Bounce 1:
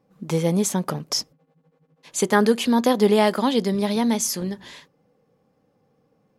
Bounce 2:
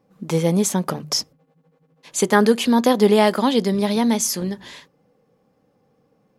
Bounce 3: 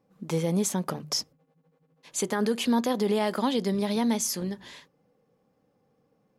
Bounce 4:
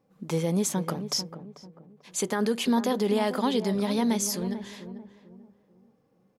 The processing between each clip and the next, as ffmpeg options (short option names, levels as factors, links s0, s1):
-af "bandreject=f=50:t=h:w=6,bandreject=f=100:t=h:w=6,bandreject=f=150:t=h:w=6,volume=1.33"
-af "alimiter=limit=0.316:level=0:latency=1:release=52,volume=0.473"
-filter_complex "[0:a]asplit=2[s0][s1];[s1]adelay=443,lowpass=f=950:p=1,volume=0.316,asplit=2[s2][s3];[s3]adelay=443,lowpass=f=950:p=1,volume=0.36,asplit=2[s4][s5];[s5]adelay=443,lowpass=f=950:p=1,volume=0.36,asplit=2[s6][s7];[s7]adelay=443,lowpass=f=950:p=1,volume=0.36[s8];[s0][s2][s4][s6][s8]amix=inputs=5:normalize=0"